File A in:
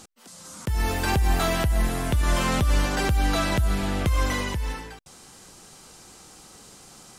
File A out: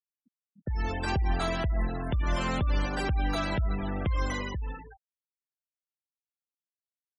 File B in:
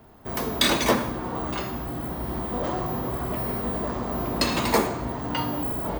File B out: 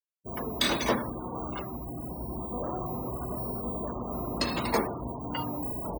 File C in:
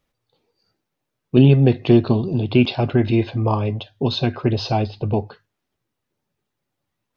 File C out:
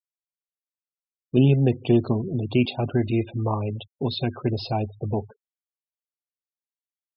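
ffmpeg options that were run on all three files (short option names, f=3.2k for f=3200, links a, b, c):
-filter_complex "[0:a]asplit=2[a][b];[b]adelay=157.4,volume=-29dB,highshelf=f=4k:g=-3.54[c];[a][c]amix=inputs=2:normalize=0,afftfilt=real='re*gte(hypot(re,im),0.0398)':imag='im*gte(hypot(re,im),0.0398)':win_size=1024:overlap=0.75,volume=-5.5dB"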